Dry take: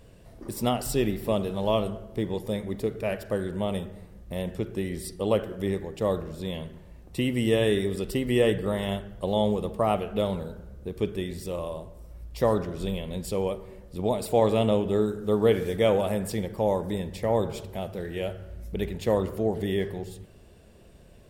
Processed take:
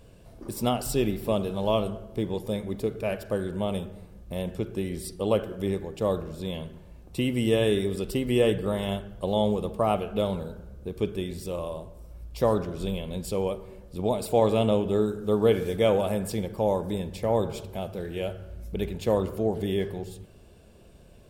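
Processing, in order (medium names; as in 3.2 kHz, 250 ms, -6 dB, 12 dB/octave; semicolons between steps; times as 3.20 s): band-stop 1.9 kHz, Q 7.8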